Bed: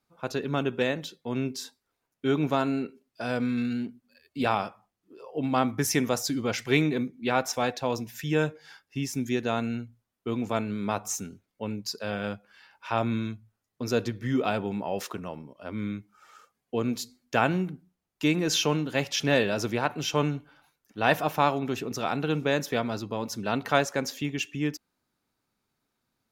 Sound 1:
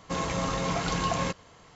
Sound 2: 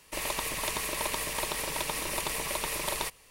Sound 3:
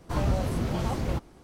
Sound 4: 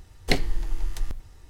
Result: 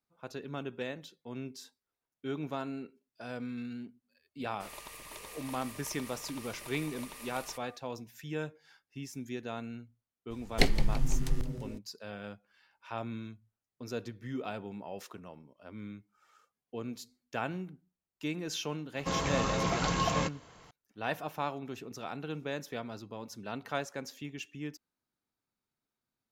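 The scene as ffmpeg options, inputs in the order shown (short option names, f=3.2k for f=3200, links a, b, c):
-filter_complex "[0:a]volume=-11.5dB[a];[2:a]aeval=exprs='val(0)+0.00794*sin(2*PI*1200*n/s)':c=same[b];[4:a]asplit=6[c][d][e][f][g][h];[d]adelay=168,afreqshift=120,volume=-14.5dB[i];[e]adelay=336,afreqshift=240,volume=-20.5dB[j];[f]adelay=504,afreqshift=360,volume=-26.5dB[k];[g]adelay=672,afreqshift=480,volume=-32.6dB[l];[h]adelay=840,afreqshift=600,volume=-38.6dB[m];[c][i][j][k][l][m]amix=inputs=6:normalize=0[n];[b]atrim=end=3.3,asetpts=PTS-STARTPTS,volume=-15dB,afade=t=in:d=0.004:c=hsin,afade=t=out:st=3.296:d=0.004:c=hsin,adelay=4480[o];[n]atrim=end=1.49,asetpts=PTS-STARTPTS,volume=-2.5dB,afade=t=in:d=0.02,afade=t=out:st=1.47:d=0.02,adelay=10300[p];[1:a]atrim=end=1.75,asetpts=PTS-STARTPTS,volume=-2dB,afade=t=in:d=0.004:c=hsin,afade=t=out:st=1.746:d=0.004:c=hsin,adelay=18960[q];[a][o][p][q]amix=inputs=4:normalize=0"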